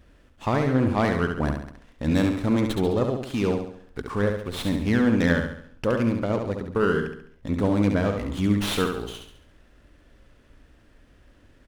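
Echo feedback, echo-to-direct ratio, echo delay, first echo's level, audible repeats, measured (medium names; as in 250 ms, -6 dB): 46%, -4.5 dB, 69 ms, -5.5 dB, 5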